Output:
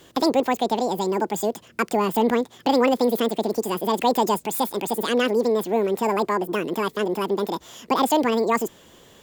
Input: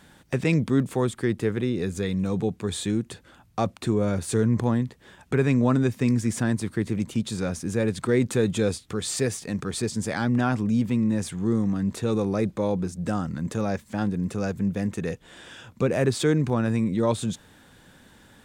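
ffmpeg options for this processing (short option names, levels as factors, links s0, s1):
-af "asetrate=88200,aresample=44100,volume=1.33"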